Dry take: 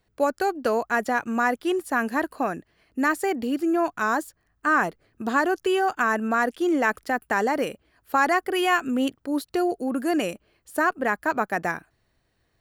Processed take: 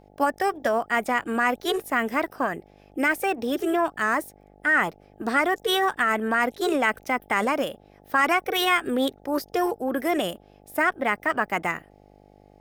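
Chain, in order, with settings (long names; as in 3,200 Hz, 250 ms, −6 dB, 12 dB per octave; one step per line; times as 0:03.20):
formants moved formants +3 semitones
hum with harmonics 50 Hz, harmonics 17, −54 dBFS −1 dB per octave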